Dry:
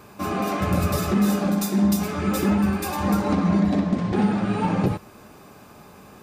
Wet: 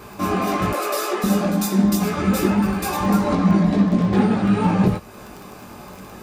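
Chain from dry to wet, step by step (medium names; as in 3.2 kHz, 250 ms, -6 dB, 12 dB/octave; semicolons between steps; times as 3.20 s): 0.71–1.24 s: steep high-pass 350 Hz 36 dB/octave; in parallel at 0 dB: compression, threshold -34 dBFS, peak gain reduction 17 dB; on the sum: chorus voices 6, 1 Hz, delay 19 ms, depth 3 ms; crackle 18 per s -33 dBFS; trim +4.5 dB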